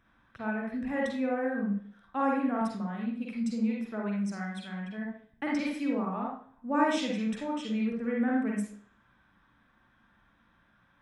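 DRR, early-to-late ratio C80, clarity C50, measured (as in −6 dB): −3.0 dB, 7.0 dB, 0.0 dB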